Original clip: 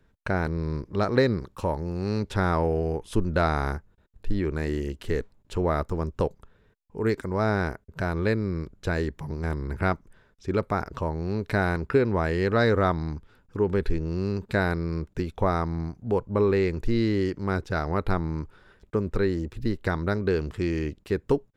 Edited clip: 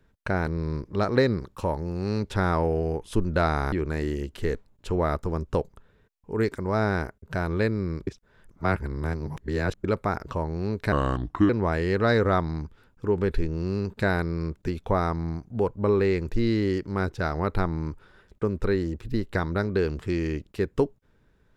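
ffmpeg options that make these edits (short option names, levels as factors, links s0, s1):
-filter_complex "[0:a]asplit=6[s0][s1][s2][s3][s4][s5];[s0]atrim=end=3.722[s6];[s1]atrim=start=4.378:end=8.732[s7];[s2]atrim=start=8.728:end=10.502,asetpts=PTS-STARTPTS,areverse[s8];[s3]atrim=start=10.498:end=11.584[s9];[s4]atrim=start=11.58:end=12.01,asetpts=PTS-STARTPTS,asetrate=33075,aresample=44100[s10];[s5]atrim=start=12.006[s11];[s6][s7]acrossfade=d=0.004:c1=hsin:c2=hsin[s12];[s12][s8]acrossfade=d=0.004:c1=hsin:c2=hsin[s13];[s13][s9]acrossfade=d=0.004:c1=hsin:c2=hsin[s14];[s14][s10]acrossfade=d=0.004:c1=hsin:c2=hsin[s15];[s15][s11]acrossfade=d=0.004:c1=hsin:c2=hsin"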